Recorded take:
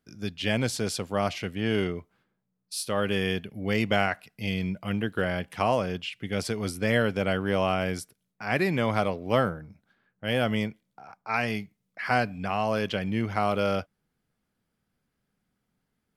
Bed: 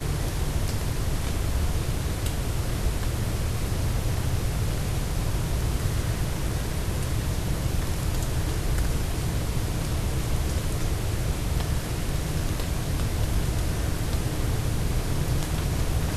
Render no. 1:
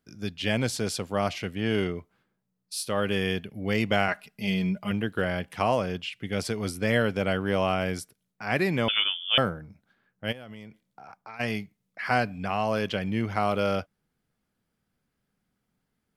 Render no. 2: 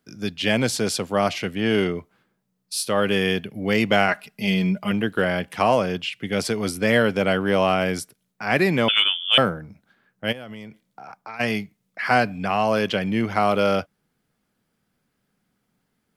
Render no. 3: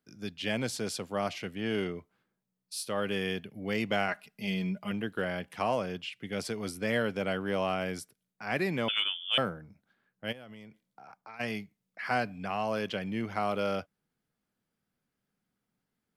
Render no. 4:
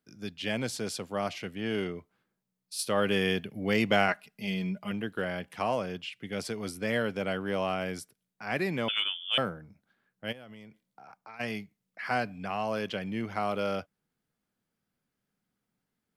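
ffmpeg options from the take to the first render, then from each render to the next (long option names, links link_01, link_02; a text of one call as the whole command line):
ffmpeg -i in.wav -filter_complex "[0:a]asettb=1/sr,asplit=3[link_01][link_02][link_03];[link_01]atrim=end=4.084[link_04];[link_02]atrim=start=4.08:end=4.91,asetpts=PTS-STARTPTS,afade=type=in:duration=0.004:curve=qsin,afade=type=out:start_time=0.826:duration=0.004:curve=qsin,aecho=1:1:4.9:0.65,atrim=end_sample=36603[link_05];[link_03]atrim=start=4.906[link_06];[link_04][link_05]acrossfade=duration=0.004:curve1=hsin:curve2=qsin[link_07];[link_07][link_06]acrossfade=duration=0.004:curve1=qsin:curve2=hsin,asettb=1/sr,asplit=3[link_08][link_09][link_10];[link_08]atrim=end=8.884[link_11];[link_09]atrim=start=8.88:end=9.38,asetpts=PTS-STARTPTS,afade=type=in:duration=0.004:curve=qsin,afade=type=out:start_time=0.496:duration=0.004:curve=qsin,lowpass=frequency=3100:width_type=q:width=0.5098,lowpass=frequency=3100:width_type=q:width=0.6013,lowpass=frequency=3100:width_type=q:width=0.9,lowpass=frequency=3100:width_type=q:width=2.563,afreqshift=-3600[link_12];[link_10]atrim=start=9.376[link_13];[link_11][link_12]acrossfade=duration=0.004:curve1=hsin:curve2=qsin[link_14];[link_14][link_13]acrossfade=duration=0.004:curve1=qsin:curve2=hsin,asplit=3[link_15][link_16][link_17];[link_15]afade=type=out:start_time=10.31:duration=0.02[link_18];[link_16]acompressor=threshold=-38dB:ratio=12:attack=3.2:release=140:knee=1:detection=peak,afade=type=in:start_time=10.31:duration=0.02,afade=type=out:start_time=11.39:duration=0.02[link_19];[link_17]afade=type=in:start_time=11.39:duration=0.02[link_20];[link_18][link_19][link_20]amix=inputs=3:normalize=0" out.wav
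ffmpeg -i in.wav -filter_complex "[0:a]acrossover=split=120[link_01][link_02];[link_01]alimiter=level_in=18.5dB:limit=-24dB:level=0:latency=1,volume=-18.5dB[link_03];[link_02]acontrast=65[link_04];[link_03][link_04]amix=inputs=2:normalize=0" out.wav
ffmpeg -i in.wav -af "volume=-11dB" out.wav
ffmpeg -i in.wav -filter_complex "[0:a]asplit=3[link_01][link_02][link_03];[link_01]atrim=end=2.792[link_04];[link_02]atrim=start=2.788:end=4.122,asetpts=PTS-STARTPTS,volume=5dB[link_05];[link_03]atrim=start=4.118[link_06];[link_04][link_05]acrossfade=duration=0.004:curve1=hsin:curve2=hsin[link_07];[link_07][link_06]acrossfade=duration=0.004:curve1=hsin:curve2=hsin" out.wav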